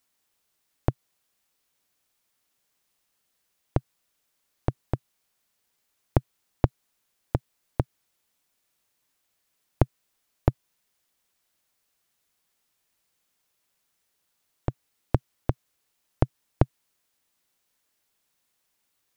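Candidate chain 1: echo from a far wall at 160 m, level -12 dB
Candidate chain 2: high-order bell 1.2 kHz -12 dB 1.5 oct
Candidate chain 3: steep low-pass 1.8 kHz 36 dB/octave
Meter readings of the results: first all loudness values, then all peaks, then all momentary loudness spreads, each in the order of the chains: -32.5 LUFS, -31.5 LUFS, -31.5 LUFS; -1.5 dBFS, -2.5 dBFS, -1.0 dBFS; 16 LU, 7 LU, 7 LU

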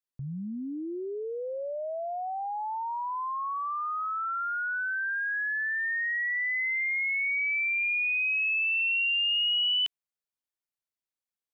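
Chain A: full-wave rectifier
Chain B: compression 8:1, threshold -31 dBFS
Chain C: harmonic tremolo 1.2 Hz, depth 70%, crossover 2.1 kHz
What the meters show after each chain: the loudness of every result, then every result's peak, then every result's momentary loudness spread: -34.0 LUFS, -31.5 LUFS, -31.0 LUFS; -23.0 dBFS, -29.5 dBFS, -24.5 dBFS; 11 LU, 6 LU, 13 LU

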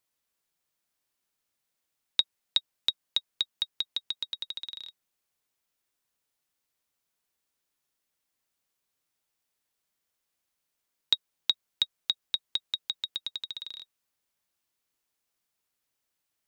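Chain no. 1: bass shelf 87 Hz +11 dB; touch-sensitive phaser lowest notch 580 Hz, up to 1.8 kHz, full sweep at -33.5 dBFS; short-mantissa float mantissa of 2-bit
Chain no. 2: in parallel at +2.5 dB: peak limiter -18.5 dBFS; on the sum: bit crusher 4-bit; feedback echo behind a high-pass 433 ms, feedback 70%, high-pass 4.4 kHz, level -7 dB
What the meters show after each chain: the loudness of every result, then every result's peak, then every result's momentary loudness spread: -32.0 LUFS, -26.5 LUFS; -8.5 dBFS, -5.0 dBFS; 9 LU, 19 LU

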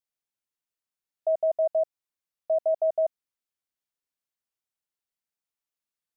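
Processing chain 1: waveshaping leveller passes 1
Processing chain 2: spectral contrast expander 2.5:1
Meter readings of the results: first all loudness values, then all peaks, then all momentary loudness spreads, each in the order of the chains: -26.5 LUFS, -29.0 LUFS; -19.0 dBFS, -19.0 dBFS; 6 LU, 6 LU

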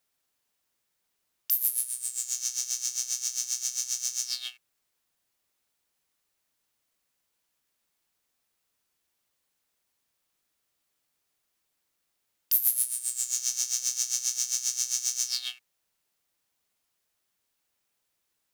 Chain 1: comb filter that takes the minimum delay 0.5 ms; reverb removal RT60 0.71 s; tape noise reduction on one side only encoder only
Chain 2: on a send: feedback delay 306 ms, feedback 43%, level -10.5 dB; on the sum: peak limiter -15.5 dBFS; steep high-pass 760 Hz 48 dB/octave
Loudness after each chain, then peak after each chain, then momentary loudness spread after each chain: -30.0 LUFS, -29.5 LUFS; -5.0 dBFS, -14.0 dBFS; 7 LU, 12 LU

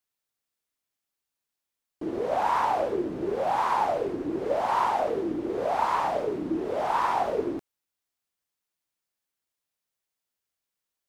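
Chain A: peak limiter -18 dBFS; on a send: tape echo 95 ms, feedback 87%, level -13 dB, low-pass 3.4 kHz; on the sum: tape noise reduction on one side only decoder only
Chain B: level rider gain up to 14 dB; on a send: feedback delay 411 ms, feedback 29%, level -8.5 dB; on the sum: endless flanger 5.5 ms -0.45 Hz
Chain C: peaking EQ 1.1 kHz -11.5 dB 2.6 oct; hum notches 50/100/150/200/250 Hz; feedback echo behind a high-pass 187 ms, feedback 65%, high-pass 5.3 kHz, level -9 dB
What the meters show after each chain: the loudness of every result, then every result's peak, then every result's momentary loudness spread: -28.0 LUFS, -18.5 LUFS, -35.0 LUFS; -16.0 dBFS, -5.0 dBFS, -21.5 dBFS; 5 LU, 9 LU, 2 LU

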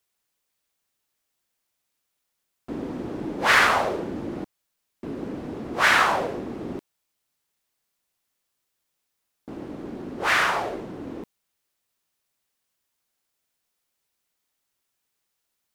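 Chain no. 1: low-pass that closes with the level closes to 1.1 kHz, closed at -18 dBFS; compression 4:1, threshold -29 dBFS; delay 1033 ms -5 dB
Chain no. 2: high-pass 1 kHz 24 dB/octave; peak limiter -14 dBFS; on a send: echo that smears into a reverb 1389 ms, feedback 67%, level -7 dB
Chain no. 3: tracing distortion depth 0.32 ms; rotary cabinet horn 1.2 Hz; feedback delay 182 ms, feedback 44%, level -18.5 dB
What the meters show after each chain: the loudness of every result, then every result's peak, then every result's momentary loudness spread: -34.0 LUFS, -30.5 LUFS, -29.0 LUFS; -19.0 dBFS, -13.0 dBFS, -6.0 dBFS; 11 LU, 20 LU, 19 LU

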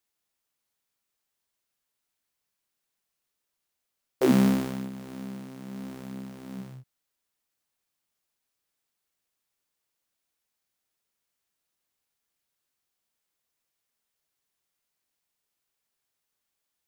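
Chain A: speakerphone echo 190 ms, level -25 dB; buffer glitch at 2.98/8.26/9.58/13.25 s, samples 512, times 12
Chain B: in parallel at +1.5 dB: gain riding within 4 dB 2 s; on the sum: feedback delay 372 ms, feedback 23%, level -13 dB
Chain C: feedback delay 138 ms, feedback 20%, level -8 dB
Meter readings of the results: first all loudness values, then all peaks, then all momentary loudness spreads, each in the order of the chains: -26.0 LUFS, -22.5 LUFS, -26.5 LUFS; -9.0 dBFS, -3.0 dBFS, -9.0 dBFS; 19 LU, 16 LU, 18 LU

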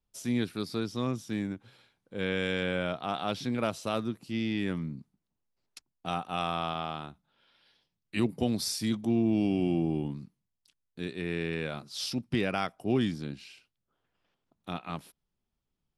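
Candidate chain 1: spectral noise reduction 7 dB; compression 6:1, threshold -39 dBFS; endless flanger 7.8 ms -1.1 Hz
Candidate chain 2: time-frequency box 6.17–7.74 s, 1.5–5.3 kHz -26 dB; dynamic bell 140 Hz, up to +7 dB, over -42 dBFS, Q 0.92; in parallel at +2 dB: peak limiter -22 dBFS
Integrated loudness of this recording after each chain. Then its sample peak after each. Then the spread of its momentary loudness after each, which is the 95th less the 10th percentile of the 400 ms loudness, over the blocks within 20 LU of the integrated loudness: -47.0 LUFS, -24.5 LUFS; -30.5 dBFS, -9.0 dBFS; 9 LU, 12 LU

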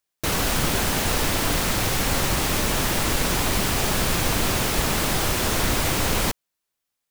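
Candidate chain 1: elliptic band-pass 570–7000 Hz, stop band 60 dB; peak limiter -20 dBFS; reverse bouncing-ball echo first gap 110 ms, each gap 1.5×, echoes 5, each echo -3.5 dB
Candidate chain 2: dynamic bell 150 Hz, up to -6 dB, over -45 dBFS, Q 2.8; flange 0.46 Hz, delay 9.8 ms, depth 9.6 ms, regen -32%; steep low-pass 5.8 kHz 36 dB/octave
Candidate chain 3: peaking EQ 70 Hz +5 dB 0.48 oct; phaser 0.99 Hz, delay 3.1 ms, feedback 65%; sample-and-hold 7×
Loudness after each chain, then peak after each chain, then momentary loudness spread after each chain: -25.5 LUFS, -28.0 LUFS, -19.5 LUFS; -14.0 dBFS, -13.5 dBFS, -4.0 dBFS; 3 LU, 1 LU, 2 LU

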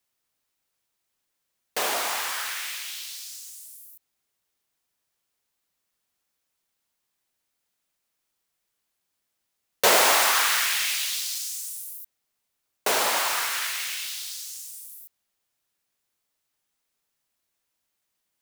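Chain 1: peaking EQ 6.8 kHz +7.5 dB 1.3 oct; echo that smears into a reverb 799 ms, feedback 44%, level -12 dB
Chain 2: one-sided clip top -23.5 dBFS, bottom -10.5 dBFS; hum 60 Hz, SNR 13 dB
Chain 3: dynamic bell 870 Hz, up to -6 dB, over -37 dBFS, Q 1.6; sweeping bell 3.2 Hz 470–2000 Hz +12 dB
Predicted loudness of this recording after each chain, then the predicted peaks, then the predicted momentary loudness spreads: -21.0 LUFS, -26.0 LUFS, -21.5 LUFS; -3.0 dBFS, -10.0 dBFS, -3.0 dBFS; 21 LU, 20 LU, 21 LU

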